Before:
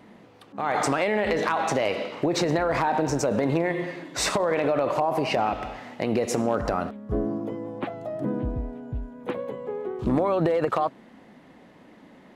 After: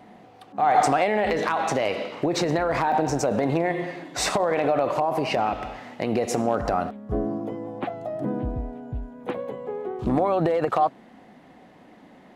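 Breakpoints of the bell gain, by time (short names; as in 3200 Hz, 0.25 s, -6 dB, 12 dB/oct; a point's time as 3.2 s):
bell 740 Hz 0.21 oct
+13 dB
from 1.3 s +2 dB
from 2.92 s +9 dB
from 4.86 s +1 dB
from 6.13 s +7.5 dB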